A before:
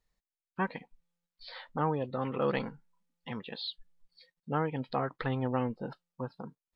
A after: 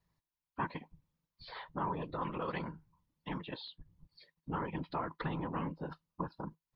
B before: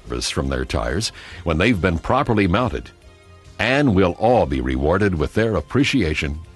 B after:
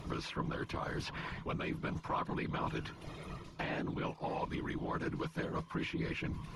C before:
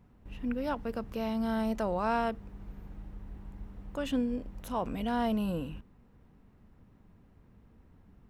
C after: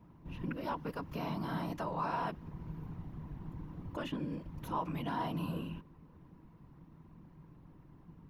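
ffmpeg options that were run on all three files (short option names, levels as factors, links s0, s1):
-filter_complex "[0:a]areverse,acompressor=threshold=0.0447:ratio=12,areverse,afftfilt=real='hypot(re,im)*cos(2*PI*random(0))':imag='hypot(re,im)*sin(2*PI*random(1))':win_size=512:overlap=0.75,acrossover=split=1100|2800[s0][s1][s2];[s0]acompressor=threshold=0.00501:ratio=4[s3];[s1]acompressor=threshold=0.00355:ratio=4[s4];[s2]acompressor=threshold=0.00112:ratio=4[s5];[s3][s4][s5]amix=inputs=3:normalize=0,equalizer=f=160:t=o:w=0.33:g=11,equalizer=f=315:t=o:w=0.33:g=6,equalizer=f=1000:t=o:w=0.33:g=10,equalizer=f=8000:t=o:w=0.33:g=-9,volume=1.78"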